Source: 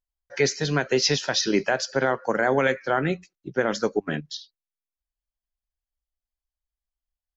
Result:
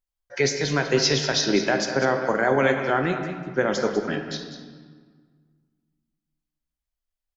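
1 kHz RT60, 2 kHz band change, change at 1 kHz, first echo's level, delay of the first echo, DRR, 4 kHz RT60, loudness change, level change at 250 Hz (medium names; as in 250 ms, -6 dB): 1.7 s, +1.5 dB, +1.5 dB, -10.5 dB, 198 ms, 4.0 dB, 1.2 s, +1.5 dB, +2.0 dB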